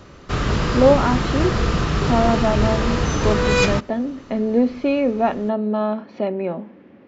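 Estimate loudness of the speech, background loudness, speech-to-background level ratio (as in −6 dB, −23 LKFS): −21.5 LKFS, −21.0 LKFS, −0.5 dB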